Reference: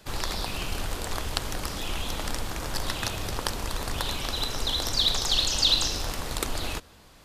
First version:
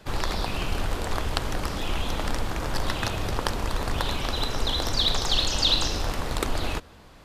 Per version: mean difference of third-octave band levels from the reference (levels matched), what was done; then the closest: 3.0 dB: high shelf 3800 Hz -10 dB; gain +4.5 dB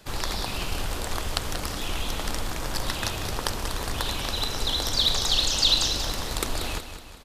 1.0 dB: feedback echo 0.186 s, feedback 49%, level -10 dB; gain +1 dB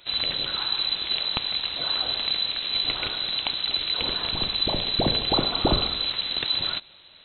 14.5 dB: inverted band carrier 4000 Hz; gain +1.5 dB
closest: second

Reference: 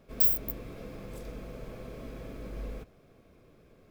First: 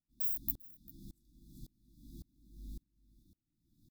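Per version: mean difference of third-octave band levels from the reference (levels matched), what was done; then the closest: 17.0 dB: FFT band-reject 350–3400 Hz; high shelf 7700 Hz +9.5 dB; on a send: echo 0.396 s -12 dB; on the sum: dB-ramp tremolo swelling 1.8 Hz, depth 32 dB; gain -3 dB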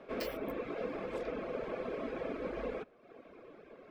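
7.5 dB: three-band isolator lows -22 dB, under 260 Hz, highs -14 dB, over 3100 Hz; Schroeder reverb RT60 2.9 s, combs from 30 ms, DRR 20 dB; reverb removal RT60 0.85 s; air absorption 67 m; gain +11 dB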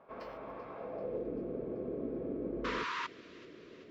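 11.0 dB: painted sound noise, 2.64–3.07, 930–7700 Hz -23 dBFS; band-pass sweep 960 Hz -> 350 Hz, 0.77–1.28; air absorption 200 m; on a send: thin delay 0.387 s, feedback 63%, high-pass 2000 Hz, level -15.5 dB; on the sum: gain +12 dB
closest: second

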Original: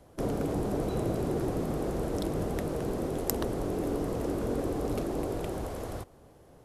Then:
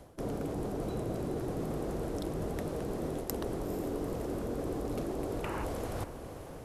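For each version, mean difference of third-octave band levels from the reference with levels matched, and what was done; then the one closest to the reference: 2.5 dB: spectral gain 5.44–5.64, 820–3000 Hz +11 dB; reverse; compressor 5:1, threshold -43 dBFS, peak gain reduction 18 dB; reverse; diffused feedback echo 0.462 s, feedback 49%, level -12 dB; gain +8.5 dB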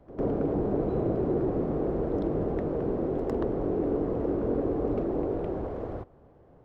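9.0 dB: dynamic EQ 390 Hz, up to +5 dB, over -43 dBFS, Q 1; Bessel low-pass 1300 Hz, order 2; on a send: reverse echo 0.103 s -16.5 dB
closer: first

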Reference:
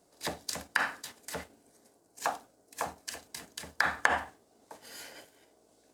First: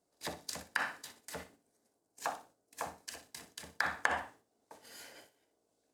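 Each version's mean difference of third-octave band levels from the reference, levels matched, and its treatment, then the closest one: 1.5 dB: gate -55 dBFS, range -8 dB; on a send: flutter echo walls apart 10.4 m, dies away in 0.28 s; on the sum: gain -5.5 dB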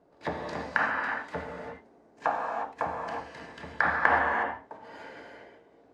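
9.5 dB: LPF 1700 Hz 12 dB/oct; non-linear reverb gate 0.39 s flat, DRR -1 dB; gain +4 dB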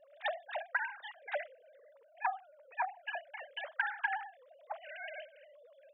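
16.0 dB: sine-wave speech; compressor 10:1, threshold -38 dBFS, peak gain reduction 17.5 dB; gain +7 dB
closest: first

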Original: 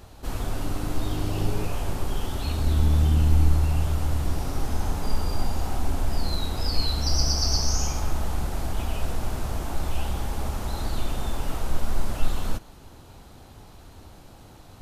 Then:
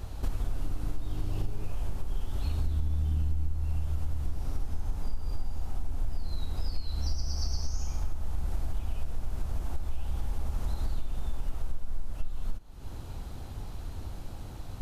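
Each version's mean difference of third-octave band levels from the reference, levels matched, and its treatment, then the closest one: 5.5 dB: low shelf 83 Hz +10 dB; compressor 6:1, threshold -29 dBFS, peak gain reduction 24.5 dB; low shelf 200 Hz +3.5 dB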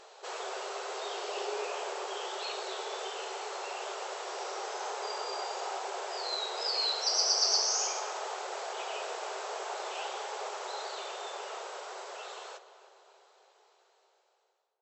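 16.5 dB: ending faded out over 4.67 s; brick-wall FIR band-pass 370–8000 Hz; on a send: tape echo 0.3 s, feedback 55%, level -13 dB, low-pass 2000 Hz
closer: first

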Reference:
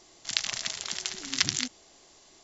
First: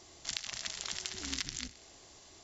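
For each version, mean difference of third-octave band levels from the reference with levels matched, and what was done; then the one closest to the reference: 6.0 dB: octaver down 2 oct, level 0 dB; compressor 10:1, threshold -33 dBFS, peak gain reduction 16 dB; thinning echo 62 ms, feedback 69%, level -17 dB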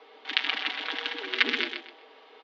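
10.0 dB: bell 1500 Hz +3.5 dB 0.23 oct; comb 5.8 ms, depth 67%; feedback echo 0.127 s, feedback 25%, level -7 dB; mistuned SSB +100 Hz 170–3300 Hz; gain +5.5 dB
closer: first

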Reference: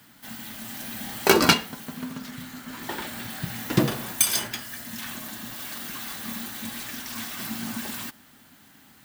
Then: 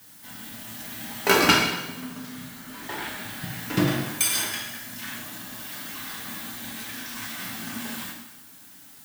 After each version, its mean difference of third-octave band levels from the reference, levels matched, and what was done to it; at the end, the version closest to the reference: 2.5 dB: notches 50/100 Hz; dynamic EQ 2000 Hz, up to +5 dB, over -41 dBFS, Q 0.92; added noise blue -48 dBFS; plate-style reverb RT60 0.98 s, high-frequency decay 0.95×, DRR -2 dB; gain -5.5 dB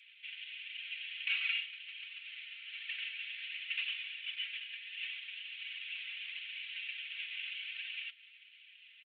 27.0 dB: CVSD 16 kbps; elliptic high-pass 2500 Hz, stop band 80 dB; comb 4.4 ms, depth 50%; flange 1.4 Hz, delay 1.3 ms, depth 3.3 ms, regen +59%; gain +10 dB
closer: first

